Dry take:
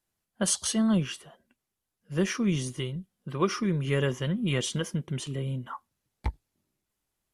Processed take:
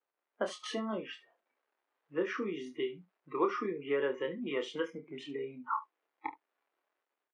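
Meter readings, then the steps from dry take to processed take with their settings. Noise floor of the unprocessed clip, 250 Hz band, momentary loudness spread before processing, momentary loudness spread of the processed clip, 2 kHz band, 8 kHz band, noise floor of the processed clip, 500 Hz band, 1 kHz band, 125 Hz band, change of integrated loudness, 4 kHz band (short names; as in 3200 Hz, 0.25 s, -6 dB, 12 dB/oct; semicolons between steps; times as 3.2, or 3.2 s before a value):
-85 dBFS, -11.0 dB, 12 LU, 12 LU, -4.5 dB, under -20 dB, under -85 dBFS, -1.5 dB, 0.0 dB, -24.5 dB, -7.5 dB, -10.5 dB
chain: crackle 540/s -43 dBFS; AGC gain up to 6 dB; LPF 1600 Hz 12 dB/oct; spectral noise reduction 25 dB; compressor 4:1, threshold -26 dBFS, peak gain reduction 10.5 dB; HPF 330 Hz 24 dB/oct; on a send: early reflections 28 ms -6.5 dB, 73 ms -17.5 dB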